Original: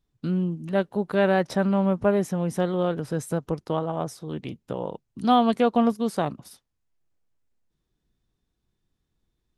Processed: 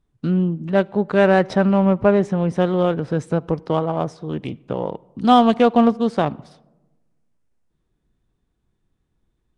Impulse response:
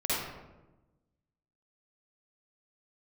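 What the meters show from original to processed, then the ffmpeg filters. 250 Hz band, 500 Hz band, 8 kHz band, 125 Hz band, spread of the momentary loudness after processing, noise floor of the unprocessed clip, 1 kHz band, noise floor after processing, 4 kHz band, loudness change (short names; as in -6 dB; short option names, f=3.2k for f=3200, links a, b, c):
+6.0 dB, +6.0 dB, n/a, +6.0 dB, 12 LU, -79 dBFS, +6.0 dB, -72 dBFS, +5.0 dB, +6.0 dB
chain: -filter_complex "[0:a]adynamicsmooth=sensitivity=6.5:basefreq=3.4k,asplit=2[a][b];[1:a]atrim=start_sample=2205[c];[b][c]afir=irnorm=-1:irlink=0,volume=-33dB[d];[a][d]amix=inputs=2:normalize=0,volume=6dB" -ar 22050 -c:a nellymoser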